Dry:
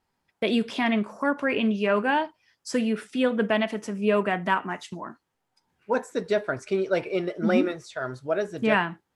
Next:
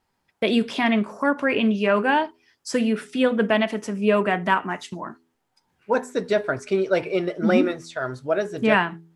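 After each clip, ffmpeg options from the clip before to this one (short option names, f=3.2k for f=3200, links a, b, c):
-af "bandreject=f=82.83:t=h:w=4,bandreject=f=165.66:t=h:w=4,bandreject=f=248.49:t=h:w=4,bandreject=f=331.32:t=h:w=4,bandreject=f=414.15:t=h:w=4,volume=3.5dB"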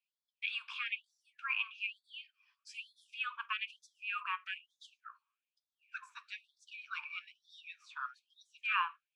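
-filter_complex "[0:a]asplit=3[a][b][c];[a]bandpass=f=730:t=q:w=8,volume=0dB[d];[b]bandpass=f=1.09k:t=q:w=8,volume=-6dB[e];[c]bandpass=f=2.44k:t=q:w=8,volume=-9dB[f];[d][e][f]amix=inputs=3:normalize=0,afftfilt=real='re*gte(b*sr/1024,860*pow(3400/860,0.5+0.5*sin(2*PI*1.1*pts/sr)))':imag='im*gte(b*sr/1024,860*pow(3400/860,0.5+0.5*sin(2*PI*1.1*pts/sr)))':win_size=1024:overlap=0.75,volume=5.5dB"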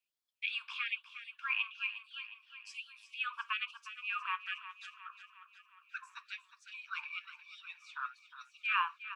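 -af "aecho=1:1:359|718|1077|1436|1795|2154:0.237|0.135|0.077|0.0439|0.025|0.0143,volume=1dB"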